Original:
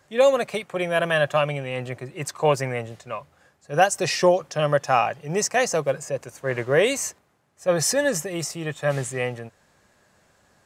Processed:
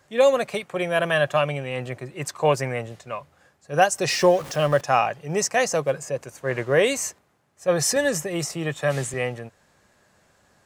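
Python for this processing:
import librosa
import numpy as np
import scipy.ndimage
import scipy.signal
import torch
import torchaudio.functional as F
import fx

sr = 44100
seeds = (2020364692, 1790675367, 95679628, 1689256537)

y = fx.zero_step(x, sr, step_db=-33.5, at=(4.08, 4.81))
y = fx.band_squash(y, sr, depth_pct=40, at=(7.96, 9.14))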